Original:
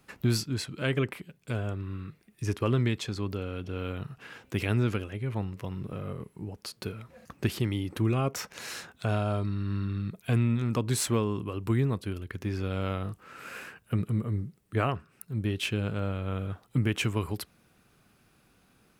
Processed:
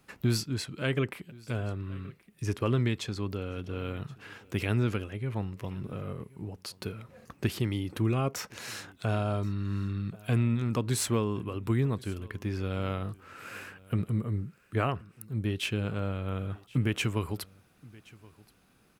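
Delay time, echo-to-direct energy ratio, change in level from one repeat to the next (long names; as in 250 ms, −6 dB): 1,075 ms, −23.5 dB, repeats not evenly spaced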